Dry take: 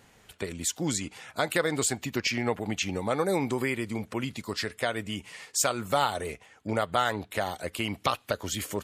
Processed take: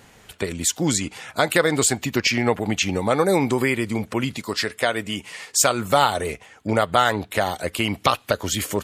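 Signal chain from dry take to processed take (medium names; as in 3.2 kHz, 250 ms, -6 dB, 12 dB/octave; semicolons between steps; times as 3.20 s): 4.38–5.51 s: bass shelf 140 Hz -8.5 dB; trim +8 dB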